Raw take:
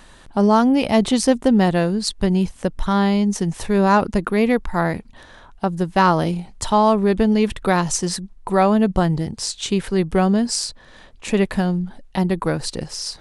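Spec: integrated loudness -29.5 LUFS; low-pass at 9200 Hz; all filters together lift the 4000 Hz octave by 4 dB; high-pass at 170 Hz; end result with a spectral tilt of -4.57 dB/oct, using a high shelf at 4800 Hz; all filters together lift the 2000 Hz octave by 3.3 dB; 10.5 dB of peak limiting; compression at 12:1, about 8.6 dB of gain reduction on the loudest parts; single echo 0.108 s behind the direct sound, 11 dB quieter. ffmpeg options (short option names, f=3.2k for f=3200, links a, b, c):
-af "highpass=170,lowpass=9.2k,equalizer=f=2k:t=o:g=3.5,equalizer=f=4k:t=o:g=6.5,highshelf=f=4.8k:g=-4,acompressor=threshold=-18dB:ratio=12,alimiter=limit=-16.5dB:level=0:latency=1,aecho=1:1:108:0.282,volume=-3.5dB"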